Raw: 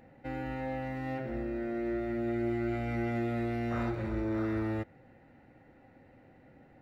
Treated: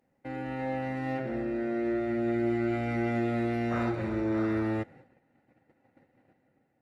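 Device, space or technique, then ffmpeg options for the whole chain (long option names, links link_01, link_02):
video call: -af "highpass=110,dynaudnorm=framelen=130:gausssize=7:maxgain=4dB,agate=range=-15dB:threshold=-52dB:ratio=16:detection=peak" -ar 48000 -c:a libopus -b:a 32k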